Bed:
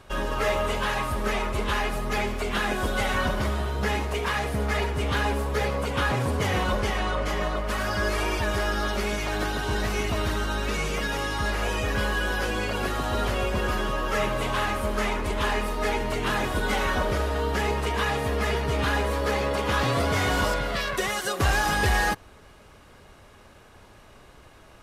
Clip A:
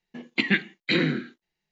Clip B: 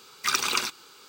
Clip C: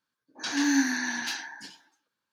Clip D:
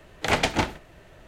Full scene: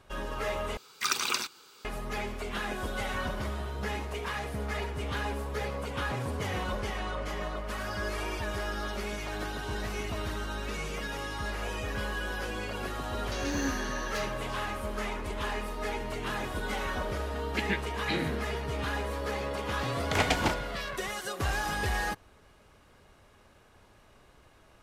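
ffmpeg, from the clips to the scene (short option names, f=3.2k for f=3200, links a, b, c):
-filter_complex "[0:a]volume=-8dB[a];[3:a]highshelf=f=11k:g=9[b];[a]asplit=2[c][d];[c]atrim=end=0.774[e];[2:a]atrim=end=1.08,asetpts=PTS-STARTPTS,volume=-4dB[f];[d]atrim=start=1.846[g];[b]atrim=end=2.32,asetpts=PTS-STARTPTS,volume=-9.5dB,afade=t=in:d=0.004:c=hsin,afade=t=out:st=2.316:d=0.004:c=hsin,adelay=12880[h];[1:a]atrim=end=1.71,asetpts=PTS-STARTPTS,volume=-9.5dB,afade=t=in:d=0.004:c=hsin,afade=t=out:st=1.706:d=0.004:c=hsin,adelay=17190[i];[4:a]atrim=end=1.27,asetpts=PTS-STARTPTS,volume=-5dB,afade=t=in:d=0.004:c=hsin,afade=t=out:st=1.266:d=0.004:c=hsin,adelay=19870[j];[e][f]acrossfade=d=0.004:c1=hsin:c2=hsin[k];[k][g]acrossfade=d=0.004:c1=hsin:c2=hsin[l];[l][h][i][j]amix=inputs=4:normalize=0"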